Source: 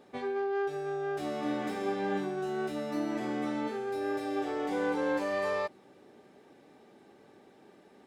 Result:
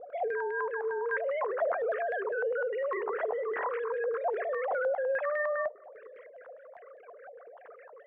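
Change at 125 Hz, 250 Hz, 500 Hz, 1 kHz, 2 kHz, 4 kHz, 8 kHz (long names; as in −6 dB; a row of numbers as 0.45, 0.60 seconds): below −25 dB, below −15 dB, +3.0 dB, +1.0 dB, +5.0 dB, below −15 dB, below −25 dB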